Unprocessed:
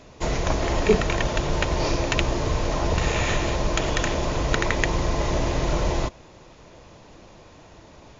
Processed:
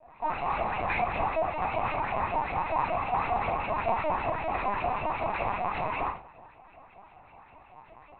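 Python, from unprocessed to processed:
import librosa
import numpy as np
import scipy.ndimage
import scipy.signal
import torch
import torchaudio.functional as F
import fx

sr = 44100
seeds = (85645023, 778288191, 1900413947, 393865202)

y = scipy.signal.sosfilt(scipy.signal.butter(8, 220.0, 'highpass', fs=sr, output='sos'), x)
y = fx.hum_notches(y, sr, base_hz=60, count=9)
y = fx.sample_hold(y, sr, seeds[0], rate_hz=2000.0, jitter_pct=20)
y = np.clip(y, -10.0 ** (-15.0 / 20.0), 10.0 ** (-15.0 / 20.0))
y = fx.fixed_phaser(y, sr, hz=2200.0, stages=8)
y = fx.filter_lfo_bandpass(y, sr, shape='saw_up', hz=5.2, low_hz=550.0, high_hz=2700.0, q=2.3)
y = fx.room_shoebox(y, sr, seeds[1], volume_m3=31.0, walls='mixed', distance_m=2.4)
y = fx.lpc_vocoder(y, sr, seeds[2], excitation='pitch_kept', order=10)
y = F.gain(torch.from_numpy(y), -4.5).numpy()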